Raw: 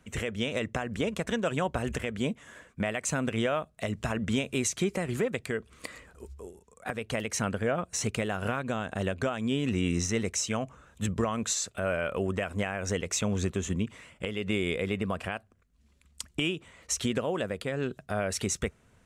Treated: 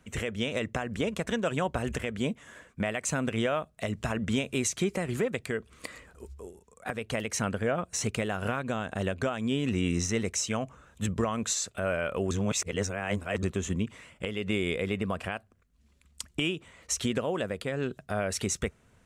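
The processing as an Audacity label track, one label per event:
12.310000	13.430000	reverse

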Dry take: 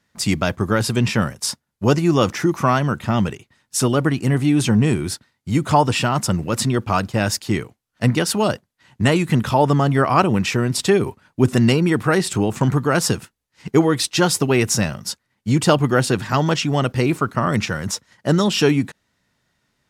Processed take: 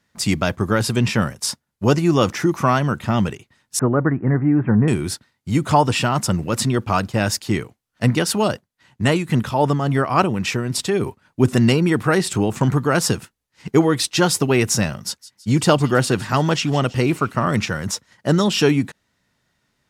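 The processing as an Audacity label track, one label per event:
3.790000	4.880000	steep low-pass 1.9 kHz 48 dB/octave
8.480000	11.400000	tremolo triangle 3.6 Hz, depth 50%
15.030000	17.600000	feedback echo behind a high-pass 163 ms, feedback 52%, high-pass 2.2 kHz, level -15.5 dB

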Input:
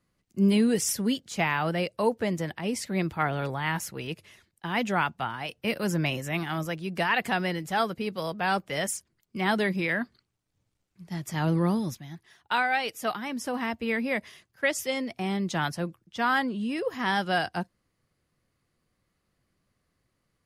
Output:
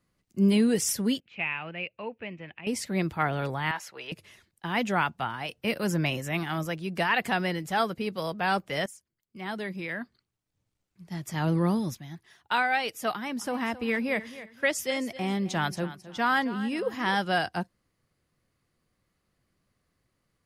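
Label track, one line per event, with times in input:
1.200000	2.670000	four-pole ladder low-pass 2.7 kHz, resonance 80%
3.710000	4.120000	three-band isolator lows -21 dB, under 460 Hz, highs -13 dB, over 5.7 kHz
8.860000	11.730000	fade in, from -16.5 dB
13.120000	17.160000	feedback delay 266 ms, feedback 27%, level -15 dB

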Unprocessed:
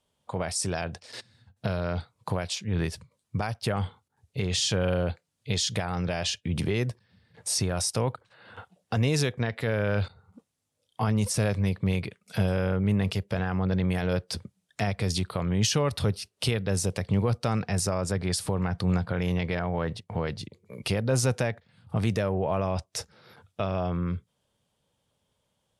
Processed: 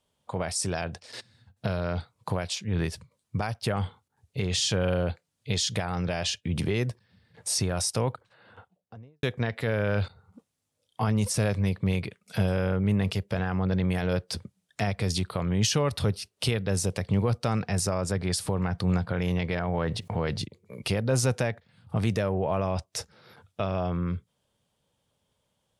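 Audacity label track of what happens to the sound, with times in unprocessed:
8.030000	9.230000	studio fade out
19.680000	20.450000	level flattener amount 50%

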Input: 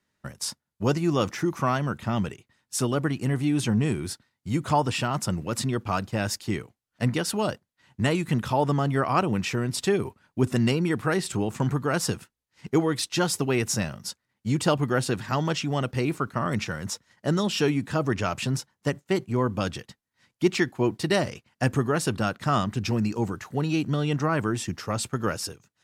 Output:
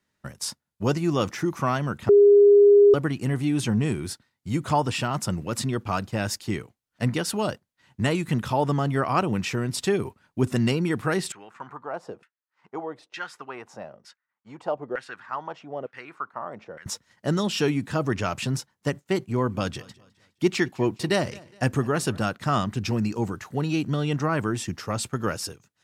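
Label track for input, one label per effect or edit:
2.090000	2.940000	bleep 407 Hz -10.5 dBFS
11.320000	16.860000	LFO band-pass saw down 1.1 Hz 470–2000 Hz
19.170000	22.260000	feedback delay 207 ms, feedback 38%, level -23 dB

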